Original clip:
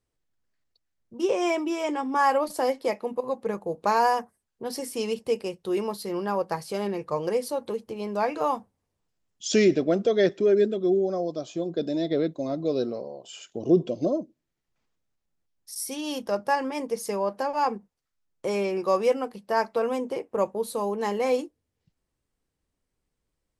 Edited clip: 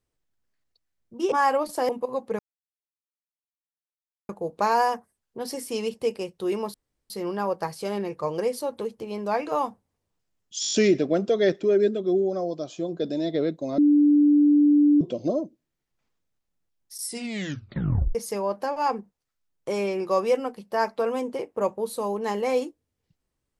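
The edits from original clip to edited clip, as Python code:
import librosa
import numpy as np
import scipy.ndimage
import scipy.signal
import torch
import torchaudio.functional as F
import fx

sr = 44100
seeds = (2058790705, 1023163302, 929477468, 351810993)

y = fx.edit(x, sr, fx.cut(start_s=1.32, length_s=0.81),
    fx.cut(start_s=2.7, length_s=0.34),
    fx.insert_silence(at_s=3.54, length_s=1.9),
    fx.insert_room_tone(at_s=5.99, length_s=0.36),
    fx.stutter(start_s=9.5, slice_s=0.02, count=7),
    fx.bleep(start_s=12.55, length_s=1.23, hz=293.0, db=-14.0),
    fx.tape_stop(start_s=15.79, length_s=1.13), tone=tone)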